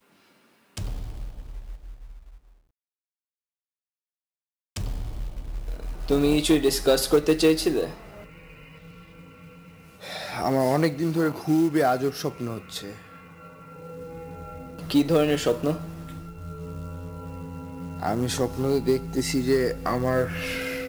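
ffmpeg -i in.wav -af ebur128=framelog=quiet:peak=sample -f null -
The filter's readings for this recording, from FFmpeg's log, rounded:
Integrated loudness:
  I:         -24.7 LUFS
  Threshold: -37.1 LUFS
Loudness range:
  LRA:        18.1 LU
  Threshold: -47.4 LUFS
  LRA low:   -41.5 LUFS
  LRA high:  -23.4 LUFS
Sample peak:
  Peak:       -8.8 dBFS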